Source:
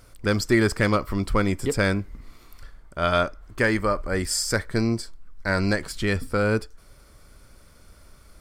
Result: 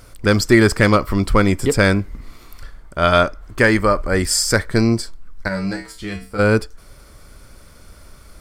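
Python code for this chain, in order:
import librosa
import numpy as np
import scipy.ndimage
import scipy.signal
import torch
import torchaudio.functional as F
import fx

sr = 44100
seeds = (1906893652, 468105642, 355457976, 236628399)

y = fx.comb_fb(x, sr, f0_hz=64.0, decay_s=0.35, harmonics='odd', damping=0.0, mix_pct=90, at=(5.47, 6.38), fade=0.02)
y = y * librosa.db_to_amplitude(7.5)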